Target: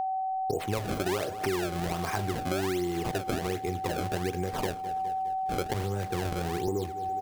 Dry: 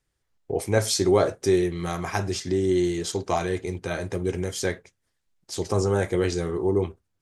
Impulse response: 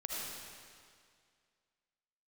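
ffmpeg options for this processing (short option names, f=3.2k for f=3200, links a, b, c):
-filter_complex "[0:a]asettb=1/sr,asplit=3[a][b][c];[a]atrim=end=5.744[d];[b]atrim=start=5.74:end=6.68,asetpts=PTS-STARTPTS,afade=t=in:d=0.004:c=qsin,afade=t=out:st=0.936:d=0.004:c=qsin,acrossover=split=210|3000[e][f][g];[f]acompressor=threshold=-35dB:ratio=2[h];[e][h][g]amix=inputs=3:normalize=0[i];[c]atrim=start=6.676[j];[d][i]acrossfade=d=0.004:c1=hsin:c2=qsin[k];[k][j]acrossfade=d=0.004:c1=qsin:c2=hsin,asplit=2[l][m];[m]alimiter=limit=-16dB:level=0:latency=1:release=75,volume=1dB[n];[l][n]amix=inputs=2:normalize=0,acrusher=samples=27:mix=1:aa=0.000001:lfo=1:lforange=43.2:lforate=1.3,aeval=exprs='val(0)+0.0501*sin(2*PI*760*n/s)':c=same,aecho=1:1:206|412|618|824:0.0891|0.0481|0.026|0.014,acompressor=threshold=-28dB:ratio=6"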